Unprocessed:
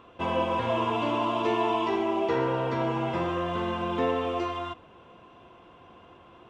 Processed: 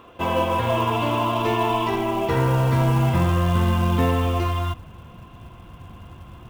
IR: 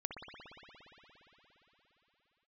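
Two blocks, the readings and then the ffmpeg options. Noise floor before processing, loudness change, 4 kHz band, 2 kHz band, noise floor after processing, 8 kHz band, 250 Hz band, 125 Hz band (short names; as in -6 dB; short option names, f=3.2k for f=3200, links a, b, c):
-53 dBFS, +6.5 dB, +5.5 dB, +5.5 dB, -45 dBFS, n/a, +5.5 dB, +16.5 dB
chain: -af "asubboost=boost=10.5:cutoff=130,acrusher=bits=6:mode=log:mix=0:aa=0.000001,volume=5.5dB"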